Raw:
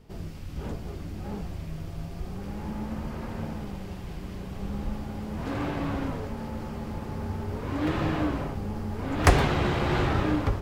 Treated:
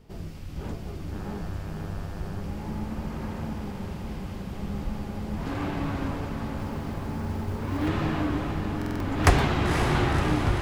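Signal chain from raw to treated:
dynamic equaliser 510 Hz, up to −4 dB, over −44 dBFS, Q 3
on a send: feedback delay with all-pass diffusion 526 ms, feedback 64%, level −6 dB
0:01.11–0:02.40: on the sum: hum with harmonics 100 Hz, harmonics 18, −45 dBFS −3 dB per octave
0:06.58–0:07.88: floating-point word with a short mantissa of 4 bits
buffer that repeats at 0:08.77, samples 2,048, times 4

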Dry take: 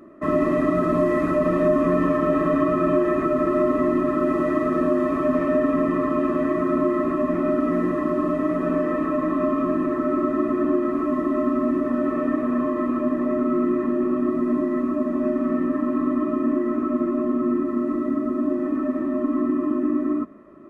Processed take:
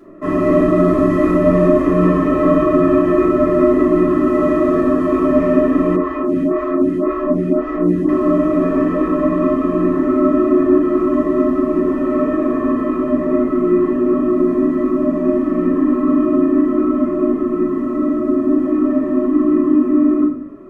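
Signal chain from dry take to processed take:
convolution reverb RT60 0.60 s, pre-delay 3 ms, DRR −6.5 dB
0:05.96–0:08.09: phaser with staggered stages 1.9 Hz
level −2 dB

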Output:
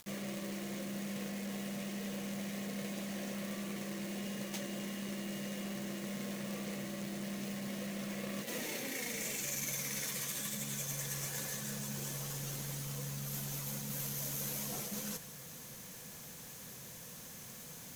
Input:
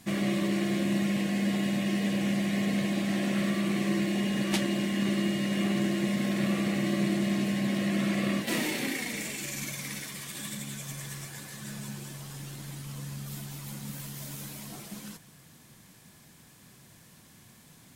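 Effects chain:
reversed playback
downward compressor 12 to 1, threshold −40 dBFS, peak gain reduction 17.5 dB
reversed playback
thirty-one-band graphic EQ 100 Hz −6 dB, 315 Hz −6 dB, 500 Hz +10 dB, 6,300 Hz +9 dB, 12,500 Hz +9 dB
log-companded quantiser 4 bits
upward compression, threshold −54 dBFS
level +1.5 dB

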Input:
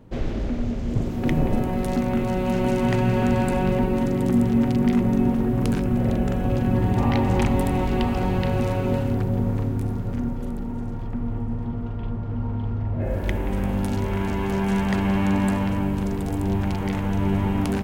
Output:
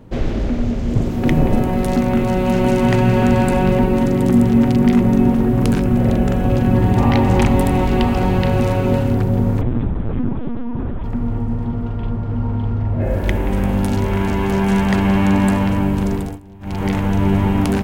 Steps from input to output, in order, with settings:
0:09.61–0:11.04: linear-prediction vocoder at 8 kHz pitch kept
0:16.15–0:16.85: duck −23.5 dB, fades 0.25 s
level +6.5 dB

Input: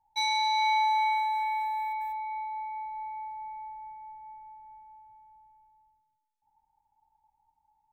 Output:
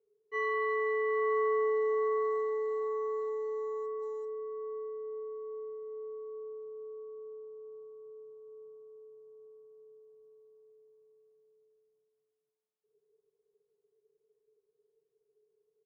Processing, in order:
high-pass filter 76 Hz
three-way crossover with the lows and the highs turned down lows −22 dB, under 250 Hz, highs −13 dB, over 2,200 Hz
comb filter 2.8 ms, depth 47%
dynamic equaliser 3,100 Hz, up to +4 dB, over −52 dBFS, Q 1.7
wrong playback speed 15 ips tape played at 7.5 ips

